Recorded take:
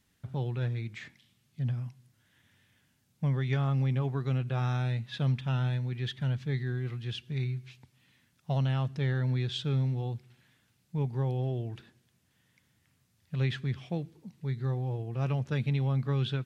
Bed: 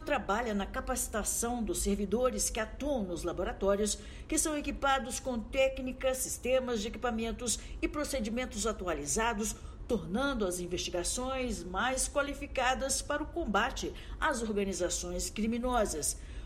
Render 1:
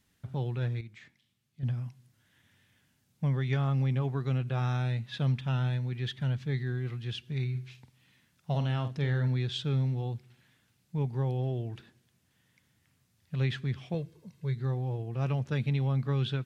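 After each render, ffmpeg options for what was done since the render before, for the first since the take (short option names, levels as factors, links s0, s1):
-filter_complex "[0:a]asettb=1/sr,asplit=3[s0][s1][s2];[s0]atrim=end=7.504[s3];[s1]atrim=start=7.5:end=9.28,asetpts=PTS-STARTPTS,afade=t=in:d=0.004:c=qsin,afade=t=out:st=1.776:d=0.004:c=qsin,asplit=2[s4][s5];[s5]adelay=48,volume=0.355[s6];[s4][s6]amix=inputs=2:normalize=0,atrim=end_sample=78498[s7];[s2]atrim=start=9.276[s8];[s3][s7]acrossfade=d=0.004:c1=hsin:c2=qsin[s9];[s9][s8]acrossfade=d=0.004:c1=qsin:c2=hsin,asettb=1/sr,asplit=3[s10][s11][s12];[s10]atrim=end=13.944[s13];[s11]atrim=start=13.94:end=14.55,asetpts=PTS-STARTPTS,afade=t=in:d=0.004:c=qsin,afade=t=out:st=0.606:d=0.004:c=qsin,aecho=1:1:1.9:0.6,atrim=end_sample=26901[s14];[s12]atrim=start=14.546[s15];[s13][s14]acrossfade=d=0.004:c1=hsin:c2=qsin[s16];[s16][s15]acrossfade=d=0.004:c1=qsin:c2=hsin,asplit=3[s17][s18][s19];[s17]atrim=end=0.812[s20];[s18]atrim=start=0.808:end=1.632,asetpts=PTS-STARTPTS,volume=0.376[s21];[s19]atrim=start=1.628[s22];[s20][s21]acrossfade=d=0.004:c1=hsin:c2=hsin[s23];[s23][s22]acrossfade=d=0.004:c1=hsin:c2=hsin"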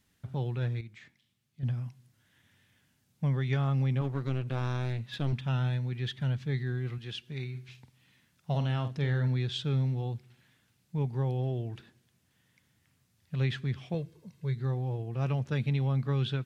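-filter_complex "[0:a]asettb=1/sr,asplit=3[s0][s1][s2];[s0]atrim=end=4.014[s3];[s1]atrim=start=4.01:end=5.33,asetpts=PTS-STARTPTS,afade=t=in:d=0.004:c=qsin,afade=t=out:st=1.316:d=0.004:c=qsin,aeval=exprs='clip(val(0),-1,0.0188)':c=same[s4];[s2]atrim=start=5.326[s5];[s3][s4]acrossfade=d=0.004:c1=hsin:c2=qsin[s6];[s6][s5]acrossfade=d=0.004:c1=qsin:c2=hsin,asettb=1/sr,asplit=3[s7][s8][s9];[s7]atrim=end=6.984[s10];[s8]atrim=start=6.98:end=7.69,asetpts=PTS-STARTPTS,afade=t=in:d=0.004:c=qsin,afade=t=out:st=0.706:d=0.004:c=qsin,equalizer=f=91:t=o:w=1.8:g=-8[s11];[s9]atrim=start=7.686[s12];[s10][s11]acrossfade=d=0.004:c1=hsin:c2=qsin[s13];[s13][s12]acrossfade=d=0.004:c1=qsin:c2=hsin"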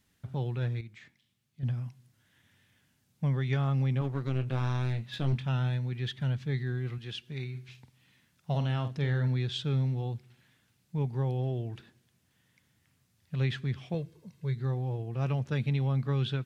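-filter_complex "[0:a]asettb=1/sr,asplit=3[s0][s1][s2];[s0]atrim=end=4.334[s3];[s1]atrim=start=4.33:end=5.45,asetpts=PTS-STARTPTS,afade=t=in:d=0.004:c=qsin,afade=t=out:st=1.116:d=0.004:c=qsin,asplit=2[s4][s5];[s5]adelay=23,volume=0.355[s6];[s4][s6]amix=inputs=2:normalize=0,atrim=end_sample=49392[s7];[s2]atrim=start=5.446[s8];[s3][s7]acrossfade=d=0.004:c1=hsin:c2=qsin[s9];[s9][s8]acrossfade=d=0.004:c1=qsin:c2=hsin"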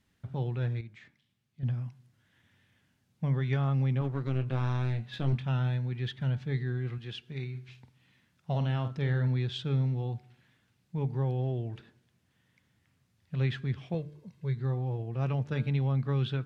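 -af "aemphasis=mode=reproduction:type=cd,bandreject=f=148:t=h:w=4,bandreject=f=296:t=h:w=4,bandreject=f=444:t=h:w=4,bandreject=f=592:t=h:w=4,bandreject=f=740:t=h:w=4,bandreject=f=888:t=h:w=4,bandreject=f=1036:t=h:w=4,bandreject=f=1184:t=h:w=4,bandreject=f=1332:t=h:w=4,bandreject=f=1480:t=h:w=4,bandreject=f=1628:t=h:w=4"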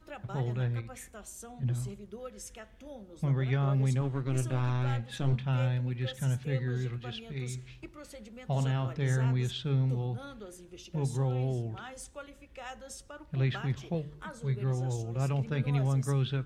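-filter_complex "[1:a]volume=0.211[s0];[0:a][s0]amix=inputs=2:normalize=0"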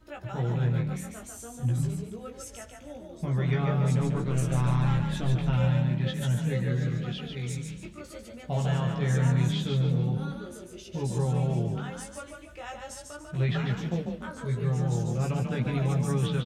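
-filter_complex "[0:a]asplit=2[s0][s1];[s1]adelay=17,volume=0.75[s2];[s0][s2]amix=inputs=2:normalize=0,asplit=6[s3][s4][s5][s6][s7][s8];[s4]adelay=145,afreqshift=31,volume=0.596[s9];[s5]adelay=290,afreqshift=62,volume=0.221[s10];[s6]adelay=435,afreqshift=93,volume=0.0813[s11];[s7]adelay=580,afreqshift=124,volume=0.0302[s12];[s8]adelay=725,afreqshift=155,volume=0.0112[s13];[s3][s9][s10][s11][s12][s13]amix=inputs=6:normalize=0"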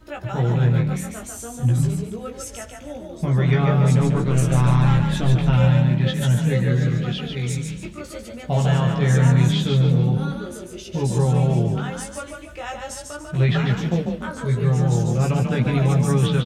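-af "volume=2.66"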